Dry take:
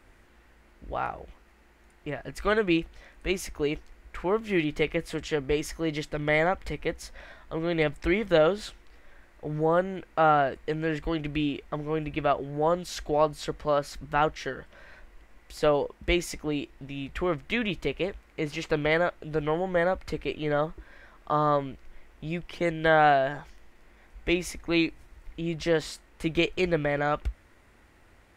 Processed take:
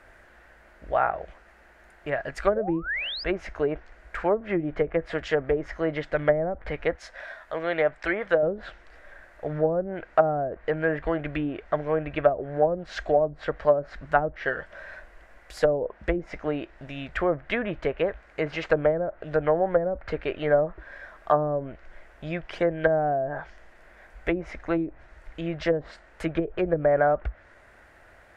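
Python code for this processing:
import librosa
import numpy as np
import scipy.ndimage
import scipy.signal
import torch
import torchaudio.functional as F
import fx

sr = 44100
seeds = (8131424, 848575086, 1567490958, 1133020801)

y = fx.spec_paint(x, sr, seeds[0], shape='rise', start_s=2.55, length_s=0.69, low_hz=500.0, high_hz=5200.0, level_db=-32.0)
y = fx.low_shelf(y, sr, hz=350.0, db=-11.0, at=(6.95, 8.43))
y = fx.env_lowpass_down(y, sr, base_hz=330.0, full_db=-20.0)
y = fx.graphic_eq_15(y, sr, hz=(250, 630, 1600), db=(-3, 11, 11))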